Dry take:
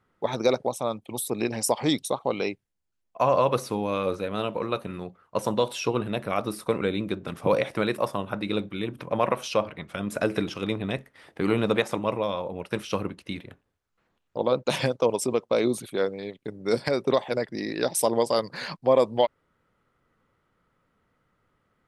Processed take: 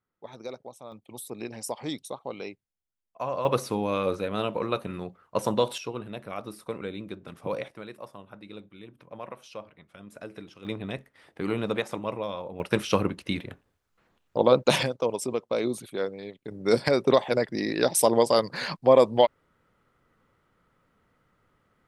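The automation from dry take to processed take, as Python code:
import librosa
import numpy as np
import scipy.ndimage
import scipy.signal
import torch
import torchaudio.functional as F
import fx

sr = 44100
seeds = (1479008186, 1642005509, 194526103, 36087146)

y = fx.gain(x, sr, db=fx.steps((0.0, -16.0), (0.92, -9.5), (3.45, 0.0), (5.78, -9.0), (7.68, -16.0), (10.65, -5.0), (12.6, 4.5), (14.83, -4.0), (16.51, 2.5)))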